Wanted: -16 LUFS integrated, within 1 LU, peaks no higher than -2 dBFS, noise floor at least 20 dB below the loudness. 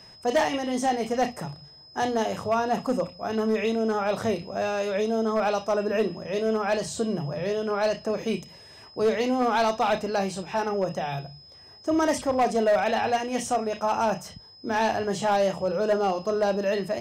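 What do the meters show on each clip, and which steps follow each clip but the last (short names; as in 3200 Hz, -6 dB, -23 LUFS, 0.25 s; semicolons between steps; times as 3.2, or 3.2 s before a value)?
clipped 1.0%; flat tops at -17.0 dBFS; steady tone 5100 Hz; tone level -48 dBFS; loudness -26.0 LUFS; peak -17.0 dBFS; loudness target -16.0 LUFS
-> clip repair -17 dBFS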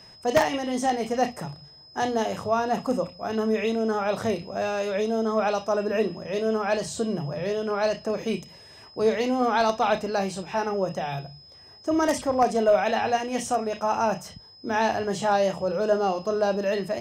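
clipped 0.0%; steady tone 5100 Hz; tone level -48 dBFS
-> notch 5100 Hz, Q 30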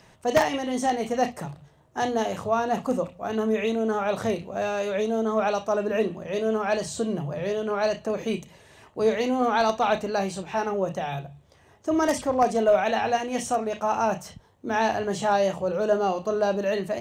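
steady tone none; loudness -25.5 LUFS; peak -8.0 dBFS; loudness target -16.0 LUFS
-> gain +9.5 dB; limiter -2 dBFS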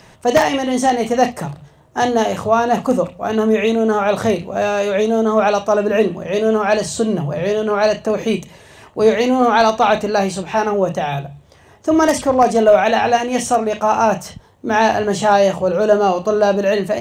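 loudness -16.5 LUFS; peak -2.0 dBFS; noise floor -48 dBFS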